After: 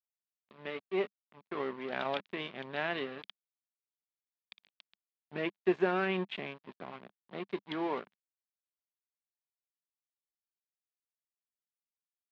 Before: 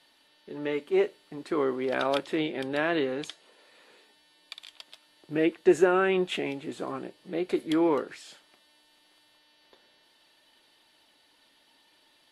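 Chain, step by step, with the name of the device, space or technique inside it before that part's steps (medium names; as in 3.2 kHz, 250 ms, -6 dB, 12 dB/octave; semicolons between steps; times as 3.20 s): blown loudspeaker (crossover distortion -35.5 dBFS; cabinet simulation 150–3800 Hz, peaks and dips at 200 Hz +5 dB, 310 Hz -9 dB, 490 Hz -7 dB, 1.3 kHz -4 dB); trim -3 dB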